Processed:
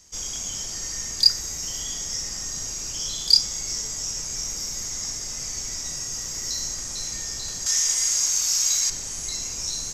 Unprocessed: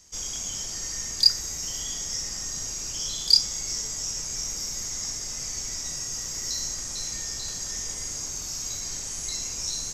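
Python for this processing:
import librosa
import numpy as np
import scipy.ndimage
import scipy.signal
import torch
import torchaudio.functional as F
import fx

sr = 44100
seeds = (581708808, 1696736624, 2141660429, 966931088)

y = fx.tilt_shelf(x, sr, db=-10.0, hz=740.0, at=(7.66, 8.9))
y = y * 10.0 ** (1.5 / 20.0)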